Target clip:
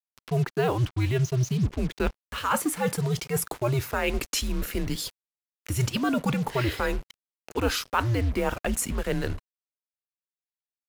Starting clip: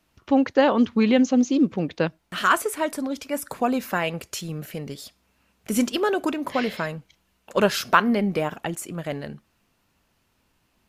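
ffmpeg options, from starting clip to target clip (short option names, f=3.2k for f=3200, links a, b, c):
-af "areverse,acompressor=threshold=-31dB:ratio=5,areverse,afreqshift=-120,acrusher=bits=7:mix=0:aa=0.5,acompressor=mode=upward:threshold=-48dB:ratio=2.5,volume=7.5dB"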